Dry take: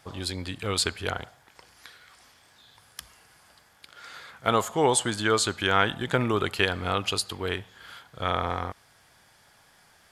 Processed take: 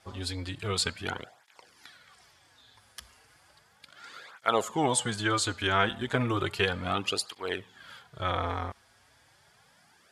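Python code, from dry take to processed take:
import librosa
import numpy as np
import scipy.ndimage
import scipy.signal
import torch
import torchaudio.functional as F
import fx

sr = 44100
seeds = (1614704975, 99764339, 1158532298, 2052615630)

y = scipy.signal.sosfilt(scipy.signal.butter(2, 11000.0, 'lowpass', fs=sr, output='sos'), x)
y = fx.flanger_cancel(y, sr, hz=0.34, depth_ms=7.0)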